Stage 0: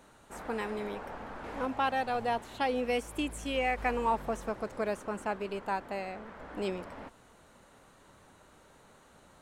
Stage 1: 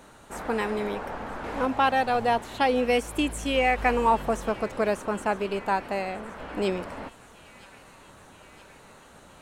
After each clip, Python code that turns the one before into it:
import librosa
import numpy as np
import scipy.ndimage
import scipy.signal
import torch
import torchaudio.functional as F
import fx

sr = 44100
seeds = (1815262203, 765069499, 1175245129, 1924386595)

y = fx.echo_wet_highpass(x, sr, ms=969, feedback_pct=71, hz=2000.0, wet_db=-18)
y = F.gain(torch.from_numpy(y), 7.5).numpy()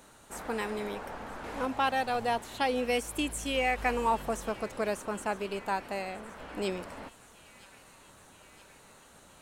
y = fx.high_shelf(x, sr, hz=4100.0, db=8.5)
y = F.gain(torch.from_numpy(y), -6.5).numpy()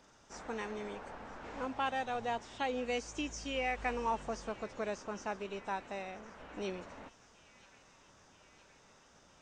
y = fx.freq_compress(x, sr, knee_hz=3000.0, ratio=1.5)
y = F.gain(torch.from_numpy(y), -6.5).numpy()